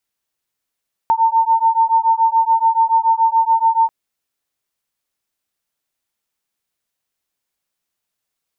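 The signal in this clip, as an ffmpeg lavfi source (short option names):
-f lavfi -i "aevalsrc='0.188*(sin(2*PI*901*t)+sin(2*PI*908*t))':d=2.79:s=44100"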